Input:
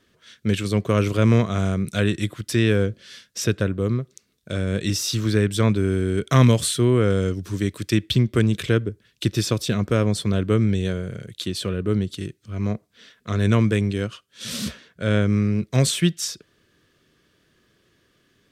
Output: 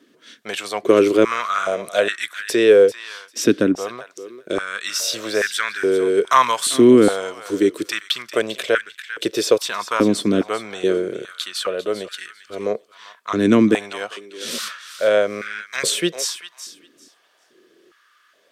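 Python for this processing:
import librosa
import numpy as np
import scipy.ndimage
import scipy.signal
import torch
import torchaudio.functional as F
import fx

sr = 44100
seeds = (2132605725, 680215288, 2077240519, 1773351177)

y = fx.echo_thinned(x, sr, ms=396, feedback_pct=18, hz=1000.0, wet_db=-11.5)
y = fx.quant_float(y, sr, bits=8, at=(14.5, 15.33))
y = fx.filter_held_highpass(y, sr, hz=2.4, low_hz=280.0, high_hz=1600.0)
y = y * librosa.db_to_amplitude(3.0)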